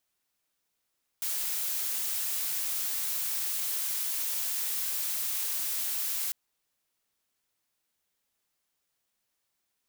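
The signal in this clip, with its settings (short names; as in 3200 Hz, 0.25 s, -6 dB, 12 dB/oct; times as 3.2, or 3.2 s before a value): noise blue, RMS -31.5 dBFS 5.10 s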